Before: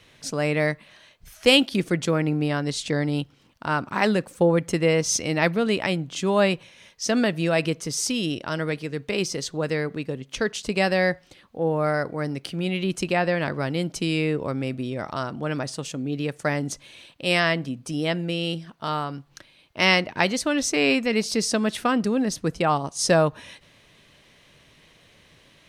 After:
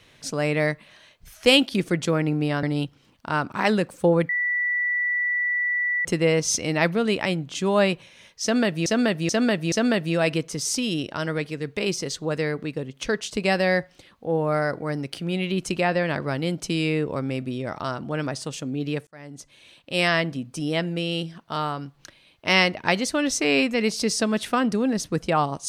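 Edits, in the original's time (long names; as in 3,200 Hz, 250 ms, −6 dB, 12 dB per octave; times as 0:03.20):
0:02.63–0:03.00: remove
0:04.66: insert tone 1,960 Hz −21 dBFS 1.76 s
0:07.04–0:07.47: repeat, 4 plays
0:16.39–0:17.40: fade in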